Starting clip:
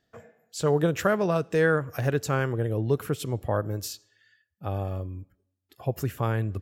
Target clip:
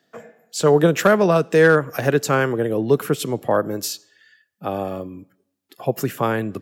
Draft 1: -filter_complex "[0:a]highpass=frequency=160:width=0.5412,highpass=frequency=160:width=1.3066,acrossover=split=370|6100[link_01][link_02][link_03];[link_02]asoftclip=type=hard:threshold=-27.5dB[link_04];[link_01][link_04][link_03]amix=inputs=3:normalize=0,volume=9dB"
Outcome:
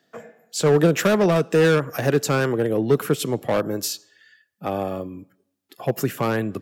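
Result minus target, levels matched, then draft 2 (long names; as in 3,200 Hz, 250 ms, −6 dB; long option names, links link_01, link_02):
hard clipping: distortion +18 dB
-filter_complex "[0:a]highpass=frequency=160:width=0.5412,highpass=frequency=160:width=1.3066,acrossover=split=370|6100[link_01][link_02][link_03];[link_02]asoftclip=type=hard:threshold=-17dB[link_04];[link_01][link_04][link_03]amix=inputs=3:normalize=0,volume=9dB"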